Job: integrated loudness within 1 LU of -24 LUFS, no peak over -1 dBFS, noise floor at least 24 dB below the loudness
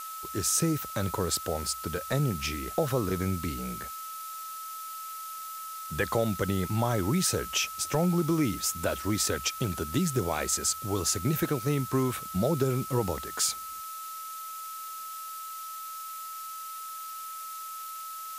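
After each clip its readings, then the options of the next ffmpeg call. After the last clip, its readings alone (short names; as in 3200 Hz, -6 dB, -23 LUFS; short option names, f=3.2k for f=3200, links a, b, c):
steady tone 1300 Hz; tone level -38 dBFS; noise floor -40 dBFS; noise floor target -55 dBFS; loudness -30.5 LUFS; peak -14.5 dBFS; loudness target -24.0 LUFS
-> -af "bandreject=f=1.3k:w=30"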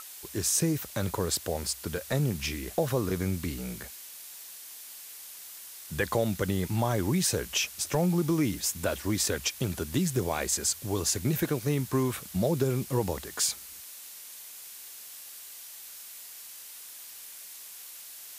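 steady tone none; noise floor -46 dBFS; noise floor target -53 dBFS
-> -af "afftdn=nr=7:nf=-46"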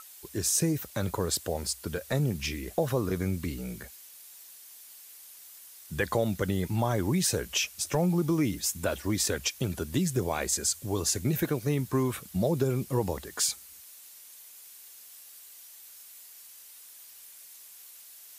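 noise floor -50 dBFS; noise floor target -54 dBFS
-> -af "afftdn=nr=6:nf=-50"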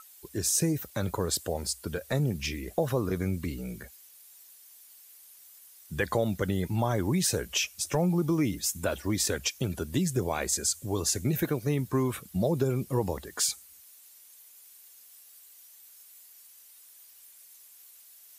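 noise floor -54 dBFS; loudness -29.5 LUFS; peak -14.5 dBFS; loudness target -24.0 LUFS
-> -af "volume=5.5dB"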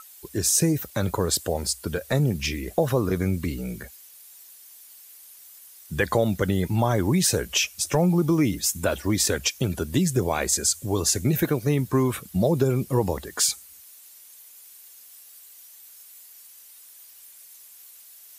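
loudness -24.0 LUFS; peak -9.0 dBFS; noise floor -49 dBFS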